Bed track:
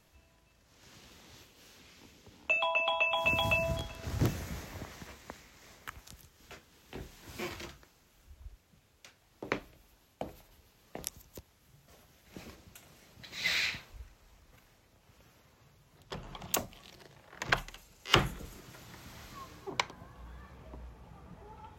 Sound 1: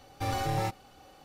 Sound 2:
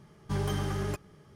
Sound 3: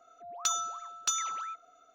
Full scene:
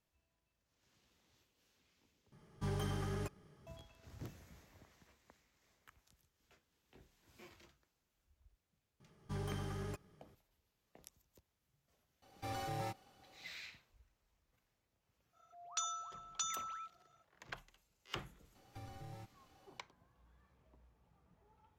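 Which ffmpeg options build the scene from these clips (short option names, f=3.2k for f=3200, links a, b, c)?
-filter_complex "[2:a]asplit=2[a][b];[1:a]asplit=2[c][d];[0:a]volume=-19.5dB[e];[c]lowshelf=f=62:g=-9[f];[3:a]highpass=650,lowpass=7.5k[g];[d]acrossover=split=280|3500[h][i][j];[h]acompressor=threshold=-36dB:ratio=4[k];[i]acompressor=threshold=-44dB:ratio=4[l];[j]acompressor=threshold=-57dB:ratio=4[m];[k][l][m]amix=inputs=3:normalize=0[n];[e]asplit=2[o][p];[o]atrim=end=2.324[q];[a]atrim=end=1.35,asetpts=PTS-STARTPTS,volume=-8dB[r];[p]atrim=start=3.666[s];[b]atrim=end=1.35,asetpts=PTS-STARTPTS,volume=-11dB,afade=t=in:d=0.004:c=hsin,afade=t=out:st=1.346:d=0.004:c=hsin,adelay=9000[t];[f]atrim=end=1.24,asetpts=PTS-STARTPTS,volume=-10.5dB,afade=t=in:d=0.004:c=hsin,afade=t=out:st=1.236:d=0.004:c=hsin,adelay=12220[u];[g]atrim=end=1.94,asetpts=PTS-STARTPTS,volume=-8.5dB,afade=t=in:d=0.05,afade=t=out:st=1.89:d=0.05,adelay=15320[v];[n]atrim=end=1.24,asetpts=PTS-STARTPTS,volume=-13.5dB,afade=t=in:d=0.004:c=hsin,afade=t=out:st=1.236:d=0.004:c=hsin,adelay=18550[w];[q][r]acrossfade=d=0.004:c1=hsin:c2=hsin[x];[x][s]acrossfade=d=0.004:c1=hsin:c2=hsin[y];[y][t][u][v][w]amix=inputs=5:normalize=0"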